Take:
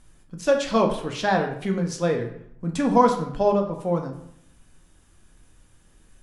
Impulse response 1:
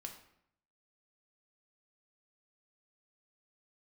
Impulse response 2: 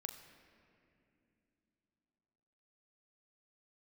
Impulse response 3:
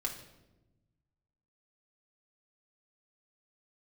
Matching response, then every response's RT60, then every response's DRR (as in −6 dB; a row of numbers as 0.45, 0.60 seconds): 1; 0.70 s, non-exponential decay, 1.0 s; 2.5, 5.0, −1.5 decibels